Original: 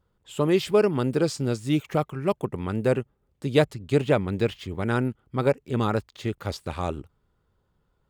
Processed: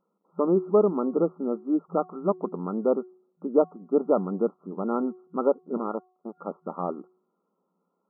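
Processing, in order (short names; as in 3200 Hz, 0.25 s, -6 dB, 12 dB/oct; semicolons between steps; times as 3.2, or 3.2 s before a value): 5.77–6.36 power-law curve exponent 2; FFT band-pass 170–1400 Hz; de-hum 368.1 Hz, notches 32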